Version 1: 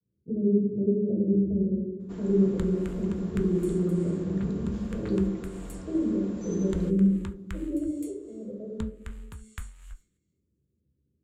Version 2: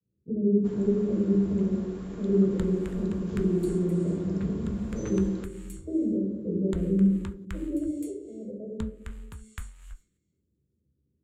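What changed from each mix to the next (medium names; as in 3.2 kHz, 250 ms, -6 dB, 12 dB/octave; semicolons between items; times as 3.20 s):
first sound: entry -1.45 s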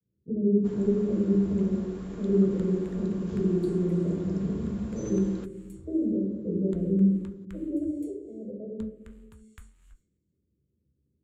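second sound -11.0 dB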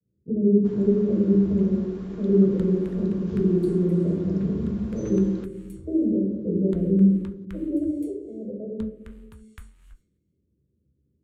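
speech +4.5 dB; second sound +5.5 dB; master: add peaking EQ 7.3 kHz -10 dB 0.25 oct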